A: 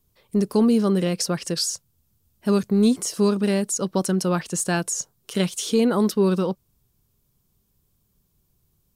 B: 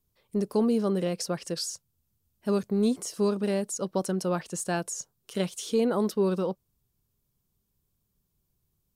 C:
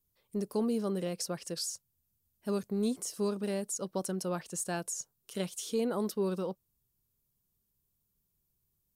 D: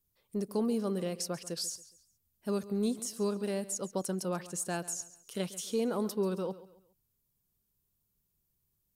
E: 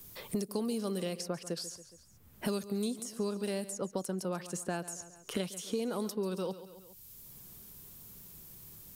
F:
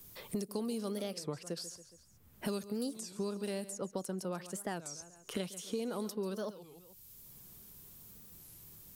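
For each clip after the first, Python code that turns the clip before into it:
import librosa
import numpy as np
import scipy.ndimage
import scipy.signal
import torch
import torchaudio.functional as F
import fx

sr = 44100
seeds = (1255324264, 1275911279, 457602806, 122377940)

y1 = fx.dynamic_eq(x, sr, hz=600.0, q=0.93, threshold_db=-34.0, ratio=4.0, max_db=6)
y1 = y1 * librosa.db_to_amplitude(-8.5)
y2 = fx.high_shelf(y1, sr, hz=7500.0, db=9.0)
y2 = y2 * librosa.db_to_amplitude(-6.5)
y3 = fx.echo_feedback(y2, sr, ms=138, feedback_pct=35, wet_db=-17)
y4 = fx.band_squash(y3, sr, depth_pct=100)
y4 = y4 * librosa.db_to_amplitude(-2.0)
y5 = fx.record_warp(y4, sr, rpm=33.33, depth_cents=250.0)
y5 = y5 * librosa.db_to_amplitude(-3.0)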